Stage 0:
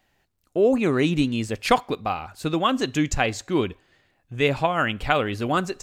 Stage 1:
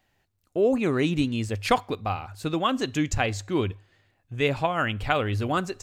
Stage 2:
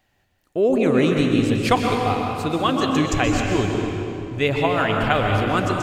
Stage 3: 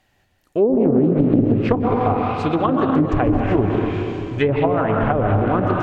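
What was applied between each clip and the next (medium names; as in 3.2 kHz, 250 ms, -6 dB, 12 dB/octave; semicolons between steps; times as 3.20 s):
peaking EQ 100 Hz +13 dB 0.22 oct; trim -3 dB
reverberation RT60 3.0 s, pre-delay 116 ms, DRR 0.5 dB; trim +3 dB
low-pass that closes with the level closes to 420 Hz, closed at -13.5 dBFS; loudspeaker Doppler distortion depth 0.35 ms; trim +3.5 dB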